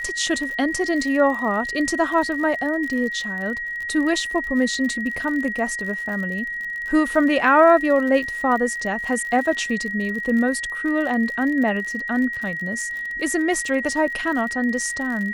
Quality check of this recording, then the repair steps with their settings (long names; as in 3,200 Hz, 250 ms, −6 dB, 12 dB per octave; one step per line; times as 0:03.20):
surface crackle 48 per second −29 dBFS
whistle 1,900 Hz −26 dBFS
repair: click removal
notch filter 1,900 Hz, Q 30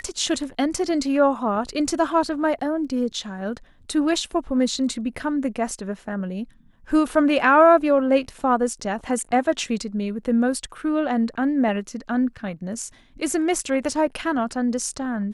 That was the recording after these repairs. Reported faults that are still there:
none of them is left